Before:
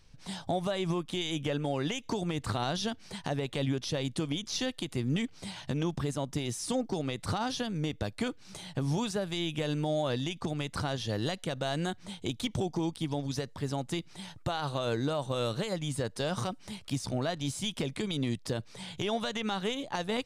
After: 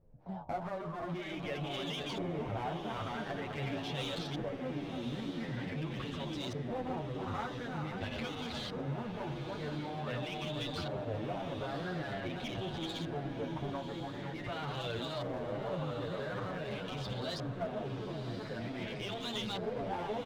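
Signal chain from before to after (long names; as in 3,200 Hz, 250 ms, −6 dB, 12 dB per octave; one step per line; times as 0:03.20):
feedback delay that plays each chunk backwards 253 ms, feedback 65%, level −4.5 dB
hum removal 67.4 Hz, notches 18
brickwall limiter −26.5 dBFS, peak gain reduction 10 dB
auto-filter low-pass saw up 0.46 Hz 540–4,500 Hz
asymmetric clip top −34 dBFS
feedback delay with all-pass diffusion 1,103 ms, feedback 42%, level −8.5 dB
barber-pole flanger 8.8 ms −2.6 Hz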